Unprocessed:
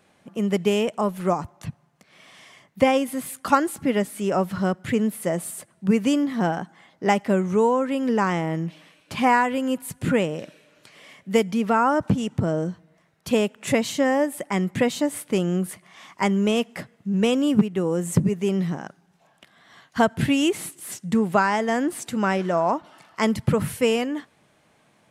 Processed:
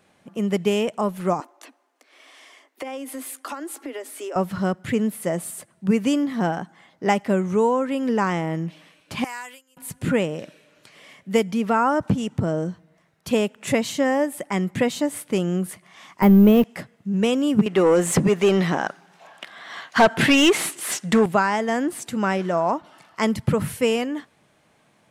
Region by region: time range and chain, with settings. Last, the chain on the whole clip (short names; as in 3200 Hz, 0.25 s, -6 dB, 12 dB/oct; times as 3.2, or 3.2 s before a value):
1.4–4.36 steep high-pass 260 Hz 96 dB/oct + compressor 16:1, threshold -28 dBFS
9.24–9.77 gate with hold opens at -15 dBFS, closes at -18 dBFS + differentiator + transient shaper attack -4 dB, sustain +3 dB
16.22–16.64 zero-crossing step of -29.5 dBFS + tilt -3.5 dB/oct + careless resampling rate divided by 3×, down filtered, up hold
17.66–21.26 low shelf 87 Hz -11 dB + overdrive pedal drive 22 dB, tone 3500 Hz, clips at -5.5 dBFS
whole clip: dry